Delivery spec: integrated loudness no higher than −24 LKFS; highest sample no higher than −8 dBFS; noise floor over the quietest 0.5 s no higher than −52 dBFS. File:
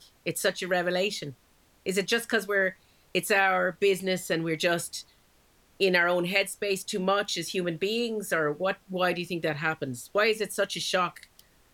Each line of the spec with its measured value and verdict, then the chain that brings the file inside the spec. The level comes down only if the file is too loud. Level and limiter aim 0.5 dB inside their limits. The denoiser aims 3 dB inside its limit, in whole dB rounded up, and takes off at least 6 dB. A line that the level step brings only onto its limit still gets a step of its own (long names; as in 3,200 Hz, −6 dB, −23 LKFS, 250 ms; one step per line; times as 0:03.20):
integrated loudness −27.5 LKFS: in spec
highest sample −9.0 dBFS: in spec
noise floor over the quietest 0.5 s −63 dBFS: in spec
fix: no processing needed